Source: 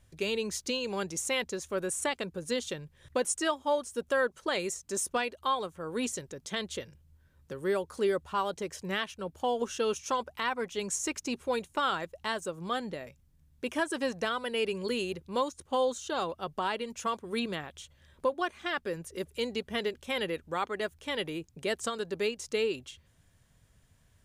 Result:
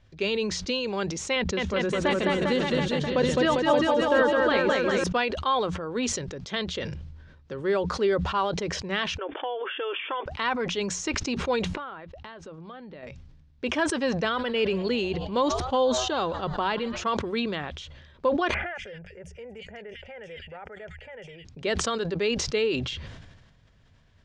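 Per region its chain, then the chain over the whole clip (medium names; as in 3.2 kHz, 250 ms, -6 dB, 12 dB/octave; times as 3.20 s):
1.36–5.04 s: tone controls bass +7 dB, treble -6 dB + bouncing-ball echo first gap 210 ms, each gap 0.9×, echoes 6, each echo -2 dB
9.18–10.26 s: compression 5:1, threshold -32 dBFS + brick-wall FIR band-pass 270–3600 Hz + peaking EQ 1.8 kHz +6.5 dB 1.2 oct
11.65–13.03 s: low-pass that closes with the level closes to 1.9 kHz, closed at -25.5 dBFS + peaking EQ 7.1 kHz -7 dB 1.2 oct + compression 12:1, threshold -43 dBFS
14.24–17.04 s: bass shelf 140 Hz +8.5 dB + frequency-shifting echo 121 ms, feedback 64%, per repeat +120 Hz, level -23 dB
18.54–21.45 s: static phaser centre 1.1 kHz, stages 6 + compression 2:1, threshold -50 dBFS + bands offset in time lows, highs 210 ms, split 2.4 kHz
whole clip: low-pass 5.1 kHz 24 dB/octave; hum notches 60/120/180 Hz; decay stretcher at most 41 dB/s; trim +4 dB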